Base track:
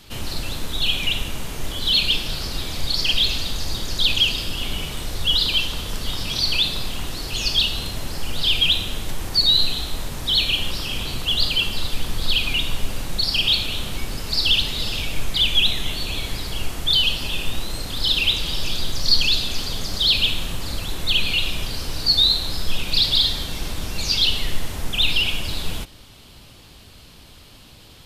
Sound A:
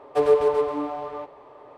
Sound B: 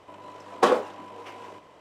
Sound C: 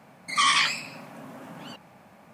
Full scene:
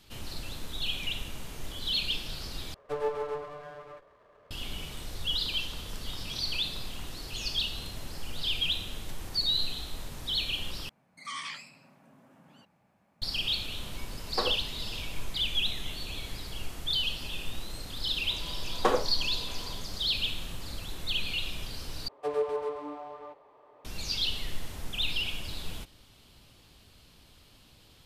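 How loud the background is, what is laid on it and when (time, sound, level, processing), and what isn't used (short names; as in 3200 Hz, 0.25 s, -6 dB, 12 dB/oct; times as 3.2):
base track -11.5 dB
2.74 replace with A -11.5 dB + minimum comb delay 1.8 ms
10.89 replace with C -17.5 dB + low shelf 140 Hz +8.5 dB
13.75 add B -12.5 dB
18.22 add B -6 dB
22.08 replace with A -9.5 dB + low shelf 370 Hz -5 dB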